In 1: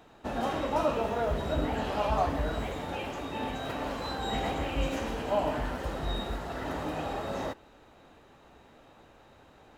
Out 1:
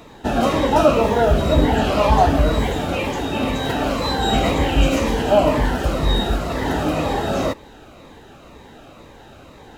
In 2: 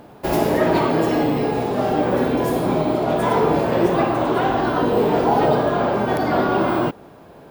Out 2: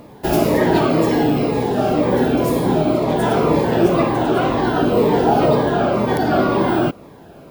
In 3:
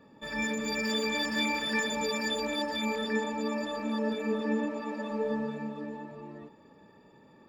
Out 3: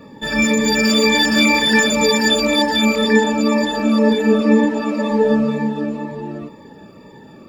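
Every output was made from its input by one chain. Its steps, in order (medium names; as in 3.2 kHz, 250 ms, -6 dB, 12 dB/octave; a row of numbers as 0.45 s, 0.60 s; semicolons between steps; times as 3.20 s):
Shepard-style phaser falling 2 Hz; peak normalisation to -2 dBFS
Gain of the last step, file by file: +15.0 dB, +4.0 dB, +17.0 dB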